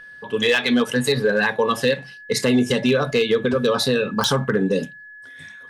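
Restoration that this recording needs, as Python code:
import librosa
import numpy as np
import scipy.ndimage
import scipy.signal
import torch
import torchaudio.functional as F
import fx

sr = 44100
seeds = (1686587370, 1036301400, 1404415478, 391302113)

y = fx.fix_declip(x, sr, threshold_db=-10.5)
y = fx.fix_declick_ar(y, sr, threshold=10.0)
y = fx.notch(y, sr, hz=1700.0, q=30.0)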